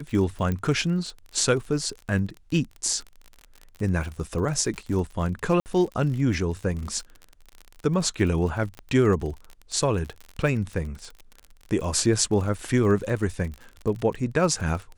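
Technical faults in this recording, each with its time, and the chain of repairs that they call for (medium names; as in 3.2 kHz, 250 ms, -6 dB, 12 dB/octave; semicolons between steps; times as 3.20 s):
crackle 44 per s -32 dBFS
0.52 s: pop -16 dBFS
5.60–5.66 s: dropout 59 ms
8.79 s: pop -24 dBFS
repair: de-click; interpolate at 5.60 s, 59 ms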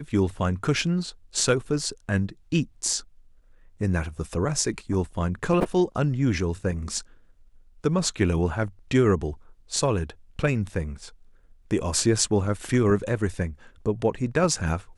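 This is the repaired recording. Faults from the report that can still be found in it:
8.79 s: pop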